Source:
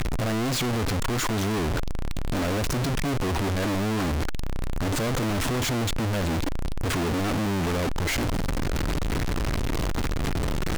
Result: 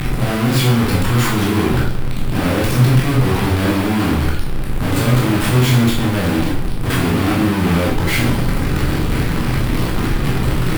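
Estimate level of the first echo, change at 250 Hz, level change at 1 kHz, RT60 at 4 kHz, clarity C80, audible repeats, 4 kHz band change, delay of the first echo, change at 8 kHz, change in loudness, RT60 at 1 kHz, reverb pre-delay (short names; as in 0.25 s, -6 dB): none, +11.0 dB, +8.0 dB, 0.60 s, 7.5 dB, none, +8.0 dB, none, +5.0 dB, +10.5 dB, 0.60 s, 8 ms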